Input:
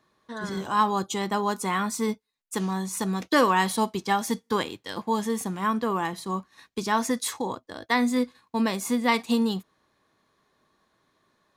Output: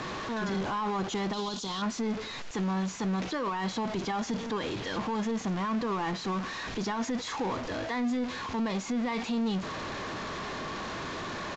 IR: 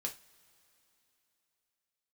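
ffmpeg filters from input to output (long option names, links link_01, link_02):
-filter_complex "[0:a]aeval=exprs='val(0)+0.5*0.0596*sgn(val(0))':channel_layout=same,aresample=16000,aresample=44100,asplit=2[link_01][link_02];[link_02]asoftclip=type=hard:threshold=-19.5dB,volume=-8dB[link_03];[link_01][link_03]amix=inputs=2:normalize=0,asettb=1/sr,asplit=3[link_04][link_05][link_06];[link_04]atrim=end=1.334[link_07];[link_05]atrim=start=1.33:end=1.82,asetpts=PTS-STARTPTS,afade=type=in:duration=0.004:curve=qsin,afade=type=out:start_time=0.486:duration=0.004:curve=qsin,highshelf=frequency=2800:width_type=q:width=3:gain=9.5[link_08];[link_06]atrim=start=1.816[link_09];[link_07][link_08]acrossfade=duration=0.004:curve1=hsin:curve2=qsin[link_10];[link_10][link_09]acrossfade=duration=0.004:curve1=qsin:curve2=hsin,alimiter=limit=-17dB:level=0:latency=1:release=12,aemphasis=mode=reproduction:type=50fm,volume=-8dB"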